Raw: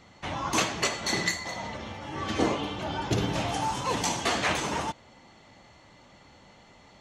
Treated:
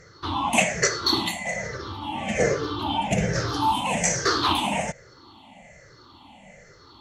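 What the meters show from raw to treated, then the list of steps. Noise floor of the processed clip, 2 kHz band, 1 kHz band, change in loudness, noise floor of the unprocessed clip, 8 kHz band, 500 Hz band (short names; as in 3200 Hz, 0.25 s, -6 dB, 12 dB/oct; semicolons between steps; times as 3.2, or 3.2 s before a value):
-51 dBFS, +4.0 dB, +5.0 dB, +5.0 dB, -55 dBFS, +6.0 dB, +5.0 dB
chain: moving spectral ripple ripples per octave 0.55, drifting -1.2 Hz, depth 22 dB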